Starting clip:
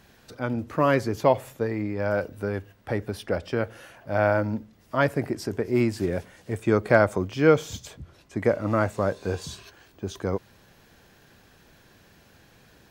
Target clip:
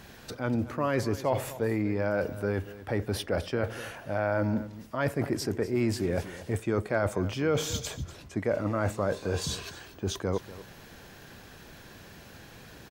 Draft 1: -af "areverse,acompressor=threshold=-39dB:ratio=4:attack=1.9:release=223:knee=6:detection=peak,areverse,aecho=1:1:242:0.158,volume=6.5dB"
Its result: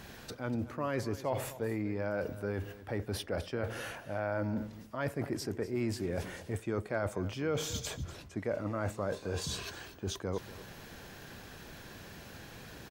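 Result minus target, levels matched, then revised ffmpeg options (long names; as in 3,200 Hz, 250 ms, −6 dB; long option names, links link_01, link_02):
downward compressor: peak gain reduction +6.5 dB
-af "areverse,acompressor=threshold=-30.5dB:ratio=4:attack=1.9:release=223:knee=6:detection=peak,areverse,aecho=1:1:242:0.158,volume=6.5dB"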